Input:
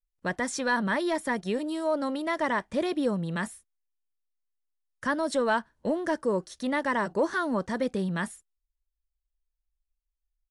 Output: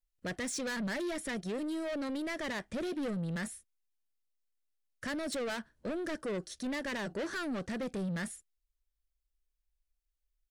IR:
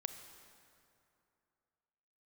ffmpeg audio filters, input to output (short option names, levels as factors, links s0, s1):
-af "asoftclip=type=tanh:threshold=0.0251,equalizer=f=950:w=2.3:g=-9.5"